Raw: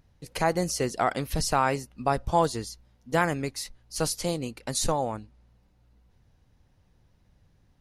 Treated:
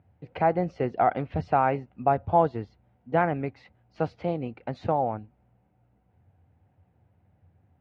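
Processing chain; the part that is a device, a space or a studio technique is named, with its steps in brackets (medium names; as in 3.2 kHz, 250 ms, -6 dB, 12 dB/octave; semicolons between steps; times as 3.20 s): bass cabinet (cabinet simulation 85–2300 Hz, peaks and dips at 86 Hz +10 dB, 740 Hz +7 dB, 1.1 kHz -5 dB, 1.8 kHz -5 dB)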